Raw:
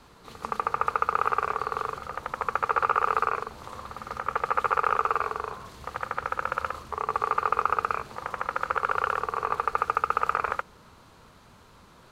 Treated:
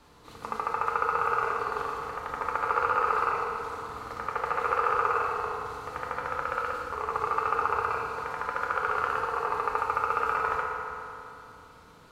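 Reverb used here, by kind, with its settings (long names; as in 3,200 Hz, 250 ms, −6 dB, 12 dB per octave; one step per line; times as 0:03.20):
feedback delay network reverb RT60 2.8 s, low-frequency decay 0.75×, high-frequency decay 0.7×, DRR −1.5 dB
level −4.5 dB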